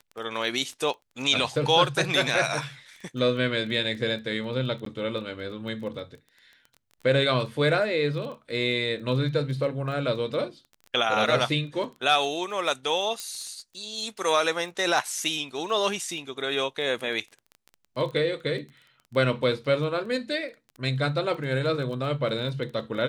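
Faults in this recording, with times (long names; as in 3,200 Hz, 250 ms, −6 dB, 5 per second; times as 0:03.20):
surface crackle 14 per second −35 dBFS
0:04.85–0:04.86: drop-out 13 ms
0:13.20: click −18 dBFS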